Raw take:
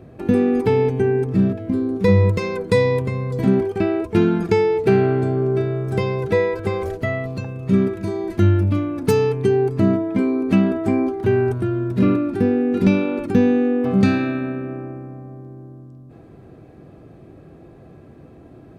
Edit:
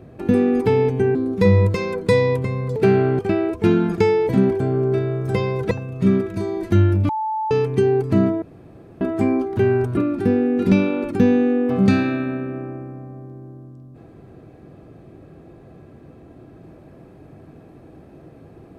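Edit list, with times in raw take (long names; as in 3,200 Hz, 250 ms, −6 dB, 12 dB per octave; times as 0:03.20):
0:01.15–0:01.78: remove
0:03.39–0:03.70: swap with 0:04.80–0:05.23
0:06.34–0:07.38: remove
0:08.76–0:09.18: beep over 873 Hz −20.5 dBFS
0:10.09–0:10.68: fill with room tone
0:11.64–0:12.12: remove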